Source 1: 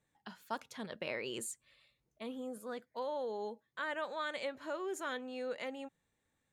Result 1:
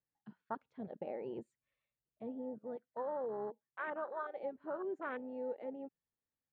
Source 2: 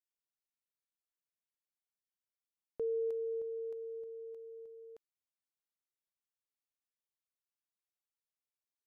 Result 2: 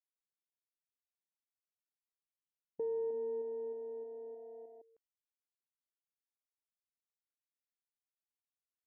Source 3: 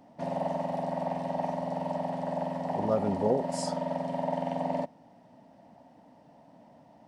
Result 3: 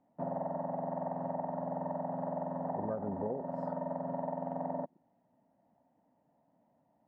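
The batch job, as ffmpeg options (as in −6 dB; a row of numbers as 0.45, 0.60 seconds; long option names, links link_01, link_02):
-af "afwtdn=0.0126,lowpass=1900,acompressor=threshold=-33dB:ratio=6"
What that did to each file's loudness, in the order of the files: −2.0, −0.5, −6.0 LU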